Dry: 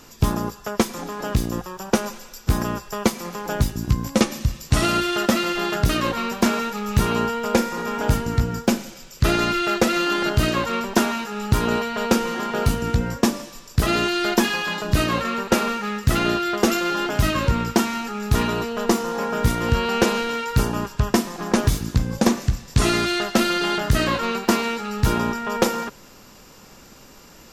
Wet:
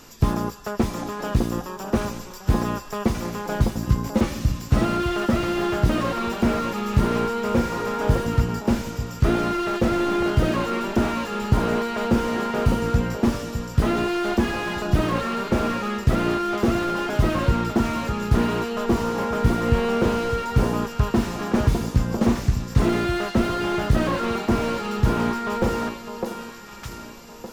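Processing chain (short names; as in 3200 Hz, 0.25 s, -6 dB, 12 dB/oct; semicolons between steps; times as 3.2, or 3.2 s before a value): echo with dull and thin repeats by turns 0.607 s, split 1100 Hz, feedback 57%, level -8.5 dB; slew limiter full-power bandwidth 74 Hz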